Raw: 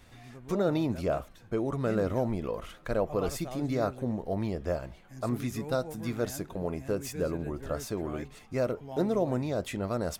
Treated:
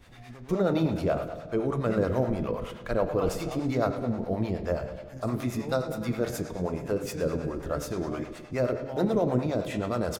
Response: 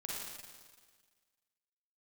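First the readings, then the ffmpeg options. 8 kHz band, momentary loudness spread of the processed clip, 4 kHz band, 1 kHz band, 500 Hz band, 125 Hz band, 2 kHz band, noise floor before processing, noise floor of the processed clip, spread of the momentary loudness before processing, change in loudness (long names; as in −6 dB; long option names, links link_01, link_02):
−0.5 dB, 7 LU, +2.0 dB, +3.0 dB, +2.5 dB, +3.0 dB, +3.0 dB, −54 dBFS, −45 dBFS, 7 LU, +2.5 dB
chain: -filter_complex "[0:a]asplit=2[link_01][link_02];[link_02]adelay=32,volume=-13.5dB[link_03];[link_01][link_03]amix=inputs=2:normalize=0,asplit=2[link_04][link_05];[1:a]atrim=start_sample=2205,lowpass=5600[link_06];[link_05][link_06]afir=irnorm=-1:irlink=0,volume=-3dB[link_07];[link_04][link_07]amix=inputs=2:normalize=0,acrossover=split=520[link_08][link_09];[link_08]aeval=exprs='val(0)*(1-0.7/2+0.7/2*cos(2*PI*9.5*n/s))':channel_layout=same[link_10];[link_09]aeval=exprs='val(0)*(1-0.7/2-0.7/2*cos(2*PI*9.5*n/s))':channel_layout=same[link_11];[link_10][link_11]amix=inputs=2:normalize=0,volume=2.5dB"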